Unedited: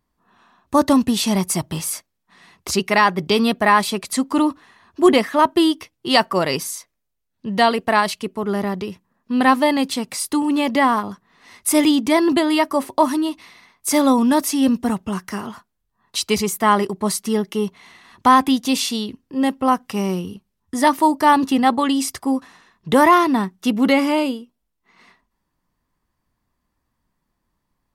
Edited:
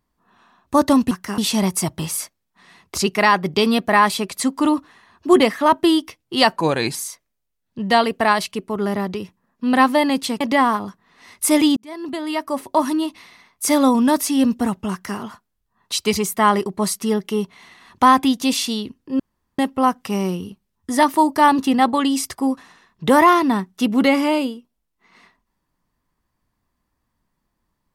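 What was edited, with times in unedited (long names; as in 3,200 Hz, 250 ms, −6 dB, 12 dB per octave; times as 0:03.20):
0:06.29–0:06.63: play speed 86%
0:10.08–0:10.64: remove
0:12.00–0:13.23: fade in
0:15.15–0:15.42: duplicate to 0:01.11
0:19.43: splice in room tone 0.39 s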